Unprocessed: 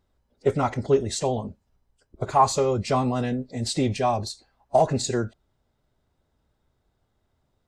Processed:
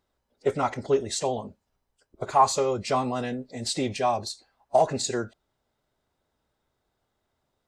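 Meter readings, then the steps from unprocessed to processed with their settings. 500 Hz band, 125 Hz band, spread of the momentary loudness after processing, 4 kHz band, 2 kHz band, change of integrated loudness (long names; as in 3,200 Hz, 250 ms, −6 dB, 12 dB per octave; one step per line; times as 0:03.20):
−2.0 dB, −8.5 dB, 13 LU, 0.0 dB, 0.0 dB, −2.0 dB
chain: low-shelf EQ 220 Hz −11.5 dB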